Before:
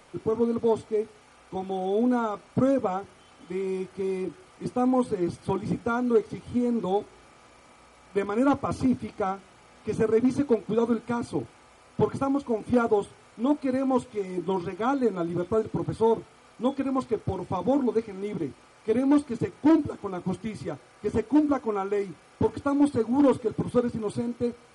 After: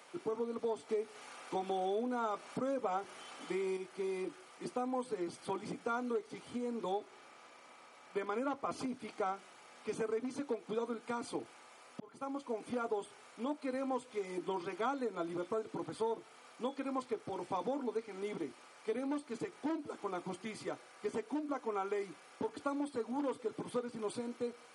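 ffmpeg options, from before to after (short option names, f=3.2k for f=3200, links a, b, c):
-filter_complex "[0:a]asettb=1/sr,asplit=3[a][b][c];[a]atrim=end=0.894[d];[b]atrim=start=0.89:end=3.77,asetpts=PTS-STARTPTS,afade=t=in:d=0.004:c=qsin,afade=t=out:st=2.876:d=0.004:c=qsin,acontrast=72[e];[c]atrim=start=3.766[f];[d][e]acrossfade=d=0.004:c1=hsin:c2=qsin[g];[g][f]acrossfade=d=0.004:c1=qsin:c2=hsin,asettb=1/sr,asplit=3[h][i][j];[h]atrim=end=6.964[k];[i]atrim=start=6.96:end=8.78,asetpts=PTS-STARTPTS,afade=t=in:d=0.004:c=qsin,afade=t=out:st=1.816:d=0.004:c=qsin,highshelf=f=7.4k:g=-7.5[l];[j]atrim=start=8.776[m];[k][l]acrossfade=d=0.004:c1=hsin:c2=qsin[n];[n][m]acrossfade=d=0.004:c1=qsin:c2=hsin,asplit=2[o][p];[o]atrim=end=12,asetpts=PTS-STARTPTS,afade=t=out:st=11.996:d=0.004:c=hsin[q];[p]atrim=start=12,asetpts=PTS-STARTPTS,afade=t=in:d=0.74[r];[q][r]concat=n=2:v=0:a=1,acompressor=threshold=-27dB:ratio=6,highpass=220,lowshelf=f=420:g=-8.5,volume=-1.5dB"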